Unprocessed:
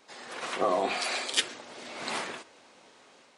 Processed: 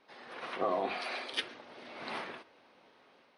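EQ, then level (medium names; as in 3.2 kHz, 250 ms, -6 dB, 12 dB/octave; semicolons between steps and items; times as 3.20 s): boxcar filter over 6 samples; -5.0 dB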